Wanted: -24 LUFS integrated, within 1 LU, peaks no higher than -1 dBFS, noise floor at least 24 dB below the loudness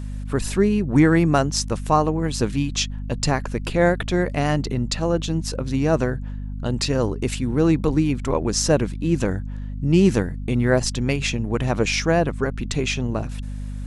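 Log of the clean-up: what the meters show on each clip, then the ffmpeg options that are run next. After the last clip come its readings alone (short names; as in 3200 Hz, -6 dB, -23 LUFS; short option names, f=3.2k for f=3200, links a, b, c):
hum 50 Hz; harmonics up to 250 Hz; hum level -27 dBFS; loudness -22.0 LUFS; peak -3.5 dBFS; loudness target -24.0 LUFS
-> -af "bandreject=f=50:t=h:w=6,bandreject=f=100:t=h:w=6,bandreject=f=150:t=h:w=6,bandreject=f=200:t=h:w=6,bandreject=f=250:t=h:w=6"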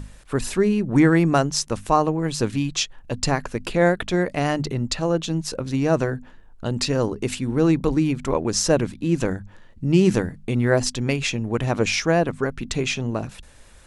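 hum none; loudness -22.5 LUFS; peak -4.5 dBFS; loudness target -24.0 LUFS
-> -af "volume=-1.5dB"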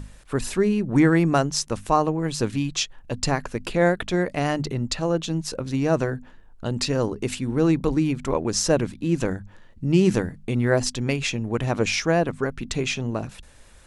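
loudness -24.0 LUFS; peak -6.0 dBFS; noise floor -49 dBFS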